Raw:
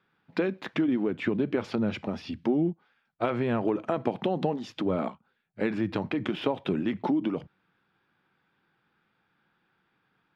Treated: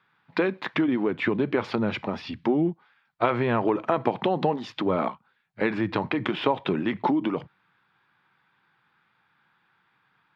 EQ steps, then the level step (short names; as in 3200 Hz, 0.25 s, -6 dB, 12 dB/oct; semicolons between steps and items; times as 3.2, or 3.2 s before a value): graphic EQ 125/1000/2000/4000 Hz +7/+11/+8/+8 dB; dynamic EQ 400 Hz, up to +6 dB, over -36 dBFS, Q 0.87; -4.5 dB